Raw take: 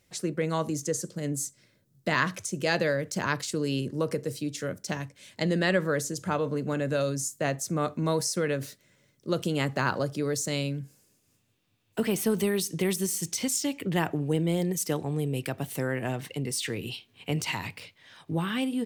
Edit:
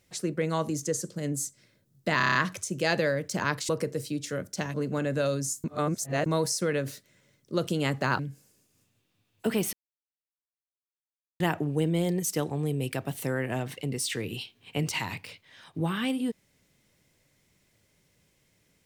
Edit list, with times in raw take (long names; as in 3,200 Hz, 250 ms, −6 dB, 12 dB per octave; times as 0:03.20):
0:02.17: stutter 0.03 s, 7 plays
0:03.51–0:04.00: remove
0:05.05–0:06.49: remove
0:07.39–0:08.01: reverse
0:09.94–0:10.72: remove
0:12.26–0:13.93: silence